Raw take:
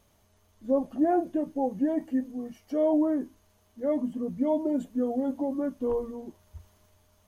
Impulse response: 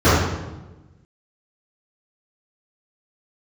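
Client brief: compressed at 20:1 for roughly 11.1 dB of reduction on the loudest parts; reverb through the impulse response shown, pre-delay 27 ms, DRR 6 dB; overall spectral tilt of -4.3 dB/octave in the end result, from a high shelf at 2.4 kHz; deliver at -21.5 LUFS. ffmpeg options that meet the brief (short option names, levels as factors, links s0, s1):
-filter_complex "[0:a]highshelf=f=2400:g=-6,acompressor=threshold=0.0282:ratio=20,asplit=2[s0][s1];[1:a]atrim=start_sample=2205,adelay=27[s2];[s1][s2]afir=irnorm=-1:irlink=0,volume=0.0224[s3];[s0][s3]amix=inputs=2:normalize=0,volume=4.47"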